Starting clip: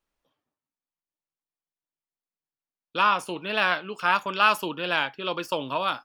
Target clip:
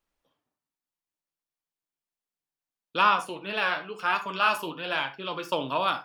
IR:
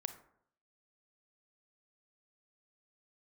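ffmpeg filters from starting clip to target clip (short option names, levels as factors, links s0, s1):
-filter_complex "[0:a]asplit=3[s0][s1][s2];[s0]afade=t=out:st=3.15:d=0.02[s3];[s1]flanger=delay=7.6:depth=6.4:regen=34:speed=1.2:shape=triangular,afade=t=in:st=3.15:d=0.02,afade=t=out:st=5.51:d=0.02[s4];[s2]afade=t=in:st=5.51:d=0.02[s5];[s3][s4][s5]amix=inputs=3:normalize=0[s6];[1:a]atrim=start_sample=2205,atrim=end_sample=4410[s7];[s6][s7]afir=irnorm=-1:irlink=0,volume=1.26"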